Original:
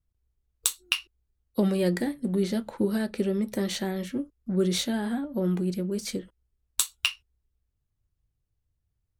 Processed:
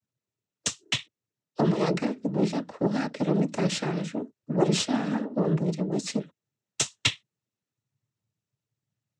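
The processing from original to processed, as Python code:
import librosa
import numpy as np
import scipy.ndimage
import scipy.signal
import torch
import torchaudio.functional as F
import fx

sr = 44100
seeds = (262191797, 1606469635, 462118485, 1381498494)

y = fx.cheby_harmonics(x, sr, harmonics=(4, 6), levels_db=(-16, -10), full_scale_db=-6.0)
y = fx.noise_vocoder(y, sr, seeds[0], bands=12)
y = fx.rider(y, sr, range_db=10, speed_s=2.0)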